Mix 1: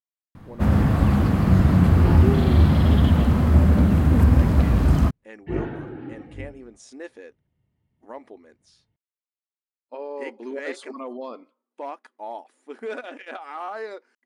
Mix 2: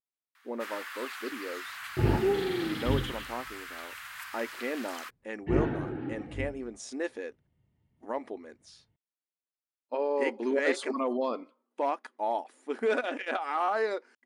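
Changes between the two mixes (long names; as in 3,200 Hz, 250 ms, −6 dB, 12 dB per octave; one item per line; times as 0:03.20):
speech +4.5 dB
first sound: add inverse Chebyshev high-pass filter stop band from 420 Hz, stop band 60 dB
reverb: off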